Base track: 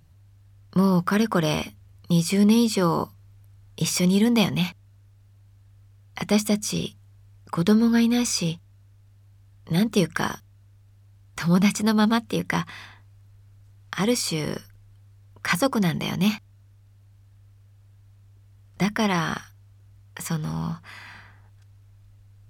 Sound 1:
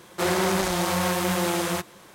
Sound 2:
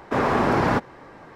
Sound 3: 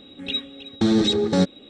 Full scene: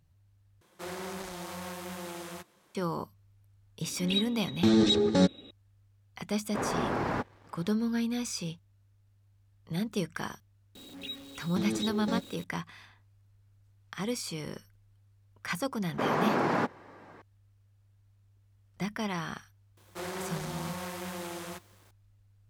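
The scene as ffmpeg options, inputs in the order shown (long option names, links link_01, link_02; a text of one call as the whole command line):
ffmpeg -i bed.wav -i cue0.wav -i cue1.wav -i cue2.wav -filter_complex "[1:a]asplit=2[link_01][link_02];[3:a]asplit=2[link_03][link_04];[2:a]asplit=2[link_05][link_06];[0:a]volume=-11dB[link_07];[link_05]aeval=exprs='sgn(val(0))*max(abs(val(0))-0.00335,0)':channel_layout=same[link_08];[link_04]aeval=exprs='val(0)+0.5*0.0282*sgn(val(0))':channel_layout=same[link_09];[link_06]highpass=frequency=140:width=0.5412,highpass=frequency=140:width=1.3066[link_10];[link_02]acrusher=bits=7:mix=0:aa=0.000001[link_11];[link_07]asplit=2[link_12][link_13];[link_12]atrim=end=0.614[link_14];[link_01]atrim=end=2.14,asetpts=PTS-STARTPTS,volume=-16dB[link_15];[link_13]atrim=start=2.746[link_16];[link_03]atrim=end=1.69,asetpts=PTS-STARTPTS,volume=-4dB,afade=type=in:duration=0.004:curve=hsin,afade=type=out:start_time=1.686:duration=0.004:curve=hsin,adelay=3820[link_17];[link_08]atrim=end=1.35,asetpts=PTS-STARTPTS,volume=-10.5dB,afade=type=in:duration=0.1,afade=type=out:start_time=1.25:duration=0.1,adelay=6430[link_18];[link_09]atrim=end=1.69,asetpts=PTS-STARTPTS,volume=-15dB,afade=type=in:duration=0.004:curve=hsin,afade=type=out:start_time=1.686:duration=0.004:curve=hsin,adelay=10750[link_19];[link_10]atrim=end=1.35,asetpts=PTS-STARTPTS,volume=-7dB,afade=type=in:duration=0.004:curve=hsin,afade=type=out:start_time=1.346:duration=0.004:curve=hsin,adelay=15870[link_20];[link_11]atrim=end=2.14,asetpts=PTS-STARTPTS,volume=-14.5dB,afade=type=in:duration=0.004:curve=hsin,afade=type=out:start_time=2.136:duration=0.004:curve=hsin,adelay=19770[link_21];[link_14][link_15]acrossfade=duration=0.004:curve1=hsin:curve2=hsin[link_22];[link_22][link_16]acrossfade=duration=0.004:curve1=hsin:curve2=hsin[link_23];[link_23][link_17][link_18][link_19][link_20][link_21]amix=inputs=6:normalize=0" out.wav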